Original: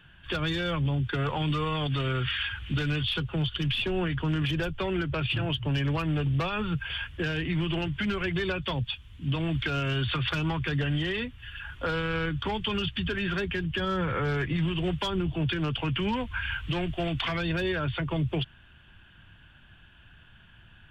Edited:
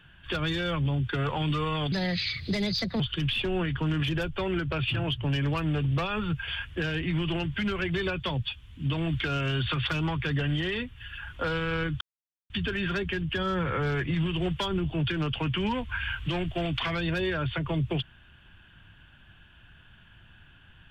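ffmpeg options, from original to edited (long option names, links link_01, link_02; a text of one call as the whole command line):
ffmpeg -i in.wav -filter_complex "[0:a]asplit=5[link_01][link_02][link_03][link_04][link_05];[link_01]atrim=end=1.924[link_06];[link_02]atrim=start=1.92:end=3.42,asetpts=PTS-STARTPTS,asetrate=61299,aresample=44100[link_07];[link_03]atrim=start=3.416:end=12.43,asetpts=PTS-STARTPTS,afade=type=out:start_time=9.01:duration=0.004:curve=hsin[link_08];[link_04]atrim=start=12.43:end=12.92,asetpts=PTS-STARTPTS,volume=0[link_09];[link_05]atrim=start=12.92,asetpts=PTS-STARTPTS,afade=type=in:duration=0.004:curve=hsin[link_10];[link_06][link_07]acrossfade=duration=0.004:curve1=hsin:curve2=hsin[link_11];[link_08][link_09][link_10]concat=n=3:v=0:a=1[link_12];[link_11][link_12]acrossfade=duration=0.004:curve1=hsin:curve2=hsin" out.wav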